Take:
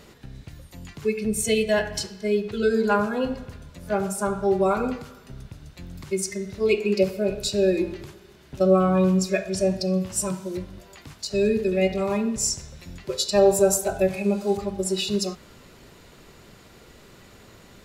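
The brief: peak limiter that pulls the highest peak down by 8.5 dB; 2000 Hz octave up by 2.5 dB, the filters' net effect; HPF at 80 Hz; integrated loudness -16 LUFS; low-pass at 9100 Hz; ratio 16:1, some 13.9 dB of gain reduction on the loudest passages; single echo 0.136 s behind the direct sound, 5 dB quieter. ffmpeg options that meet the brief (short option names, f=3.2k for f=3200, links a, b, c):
-af "highpass=80,lowpass=9.1k,equalizer=f=2k:t=o:g=3.5,acompressor=threshold=-26dB:ratio=16,alimiter=level_in=0.5dB:limit=-24dB:level=0:latency=1,volume=-0.5dB,aecho=1:1:136:0.562,volume=17dB"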